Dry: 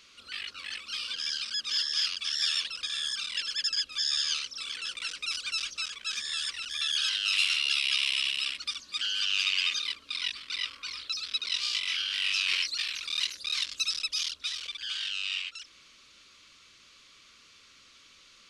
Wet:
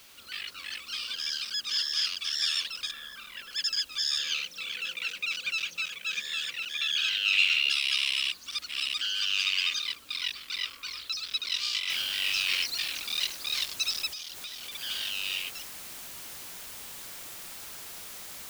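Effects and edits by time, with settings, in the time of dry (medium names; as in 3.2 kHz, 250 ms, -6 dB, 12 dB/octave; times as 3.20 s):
2.91–3.53 s: low-pass 1.8 kHz
4.18–7.70 s: cabinet simulation 110–7100 Hz, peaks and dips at 170 Hz +9 dB, 510 Hz +7 dB, 1.1 kHz -5 dB, 2.5 kHz +7 dB, 5.2 kHz -9 dB
8.32–8.94 s: reverse
11.90 s: noise floor step -56 dB -43 dB
14.07–14.72 s: compression 5:1, threshold -36 dBFS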